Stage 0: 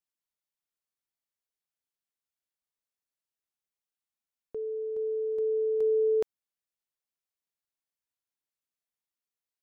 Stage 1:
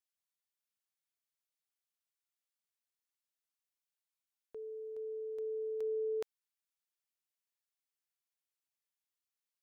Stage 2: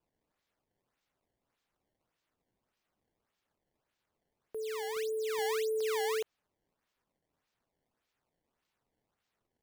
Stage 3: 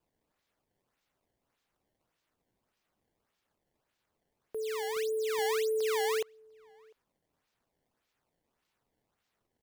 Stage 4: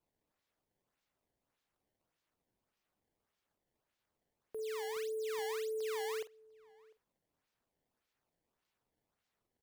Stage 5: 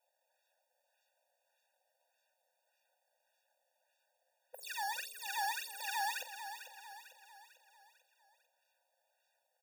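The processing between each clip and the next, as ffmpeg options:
-af "tiltshelf=f=670:g=-7,volume=-8dB"
-af "alimiter=level_in=12dB:limit=-24dB:level=0:latency=1:release=40,volume=-12dB,acrusher=samples=20:mix=1:aa=0.000001:lfo=1:lforange=32:lforate=1.7,volume=7dB"
-filter_complex "[0:a]asplit=2[a][b];[b]adelay=699.7,volume=-28dB,highshelf=f=4k:g=-15.7[c];[a][c]amix=inputs=2:normalize=0,volume=2.5dB"
-filter_complex "[0:a]acompressor=threshold=-32dB:ratio=6,asplit=2[a][b];[b]adelay=46,volume=-13dB[c];[a][c]amix=inputs=2:normalize=0,volume=-5.5dB"
-filter_complex "[0:a]asplit=2[a][b];[b]aecho=0:1:448|896|1344|1792|2240:0.316|0.152|0.0729|0.035|0.0168[c];[a][c]amix=inputs=2:normalize=0,afftfilt=real='re*eq(mod(floor(b*sr/1024/480),2),1)':imag='im*eq(mod(floor(b*sr/1024/480),2),1)':win_size=1024:overlap=0.75,volume=9.5dB"

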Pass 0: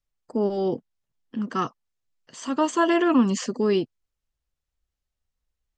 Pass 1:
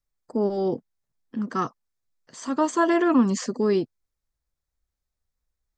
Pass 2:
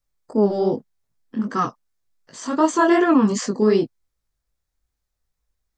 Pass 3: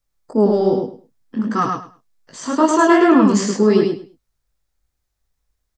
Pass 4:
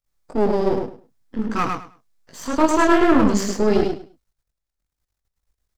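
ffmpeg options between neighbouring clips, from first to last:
-af "equalizer=f=2.9k:t=o:w=0.33:g=-10"
-af "flanger=delay=18.5:depth=5.5:speed=2.6,volume=7.5dB"
-af "aecho=1:1:104|208|312:0.631|0.12|0.0228,volume=2.5dB"
-af "aeval=exprs='if(lt(val(0),0),0.251*val(0),val(0))':c=same"

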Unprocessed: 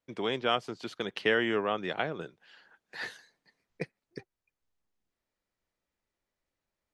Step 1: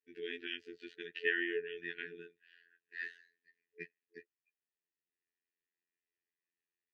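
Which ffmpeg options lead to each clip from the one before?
-filter_complex "[0:a]afftfilt=real='re*(1-between(b*sr/4096,440,1400))':imag='im*(1-between(b*sr/4096,440,1400))':win_size=4096:overlap=0.75,asplit=3[a][b][c];[a]bandpass=f=530:t=q:w=8,volume=0dB[d];[b]bandpass=f=1.84k:t=q:w=8,volume=-6dB[e];[c]bandpass=f=2.48k:t=q:w=8,volume=-9dB[f];[d][e][f]amix=inputs=3:normalize=0,afftfilt=real='hypot(re,im)*cos(PI*b)':imag='0':win_size=2048:overlap=0.75,volume=8.5dB"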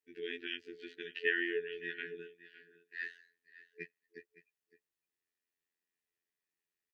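-af "aecho=1:1:562:0.141,volume=1dB"

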